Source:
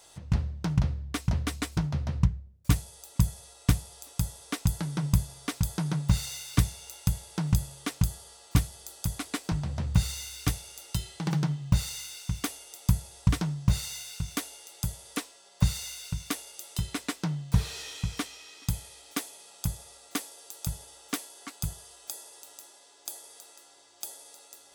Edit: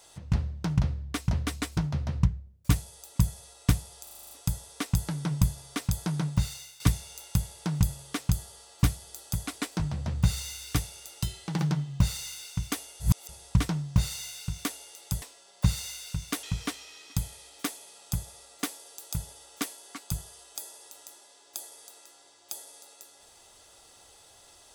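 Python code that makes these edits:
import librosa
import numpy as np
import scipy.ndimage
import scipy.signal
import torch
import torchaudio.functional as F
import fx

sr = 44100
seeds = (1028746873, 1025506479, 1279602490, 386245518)

y = fx.edit(x, sr, fx.stutter(start_s=4.03, slice_s=0.04, count=8),
    fx.fade_out_to(start_s=5.95, length_s=0.57, floor_db=-12.5),
    fx.reverse_span(start_s=12.72, length_s=0.29),
    fx.cut(start_s=14.94, length_s=0.26),
    fx.cut(start_s=16.41, length_s=1.54), tone=tone)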